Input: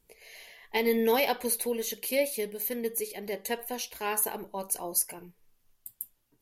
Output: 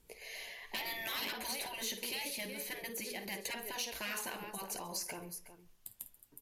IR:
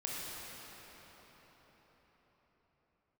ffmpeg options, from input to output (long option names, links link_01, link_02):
-filter_complex "[0:a]asplit=2[link_01][link_02];[link_02]aecho=0:1:52|365:0.2|0.141[link_03];[link_01][link_03]amix=inputs=2:normalize=0,afftfilt=real='re*lt(hypot(re,im),0.0794)':imag='im*lt(hypot(re,im),0.0794)':win_size=1024:overlap=0.75,asplit=2[link_04][link_05];[link_05]aecho=0:1:134:0.0708[link_06];[link_04][link_06]amix=inputs=2:normalize=0,aeval=exprs='0.0631*(abs(mod(val(0)/0.0631+3,4)-2)-1)':channel_layout=same,acrossover=split=1400|5600[link_07][link_08][link_09];[link_07]acompressor=threshold=-46dB:ratio=4[link_10];[link_08]acompressor=threshold=-40dB:ratio=4[link_11];[link_09]acompressor=threshold=-45dB:ratio=4[link_12];[link_10][link_11][link_12]amix=inputs=3:normalize=0,aemphasis=mode=reproduction:type=50fm,asoftclip=type=tanh:threshold=-35dB,crystalizer=i=2:c=0,volume=2.5dB"